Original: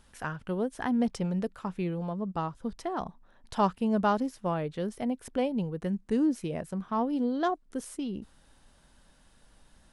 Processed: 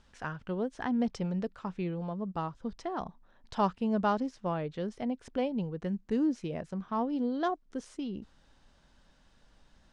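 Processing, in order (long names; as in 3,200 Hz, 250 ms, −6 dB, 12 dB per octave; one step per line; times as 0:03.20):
low-pass filter 6,800 Hz 24 dB per octave
level −2.5 dB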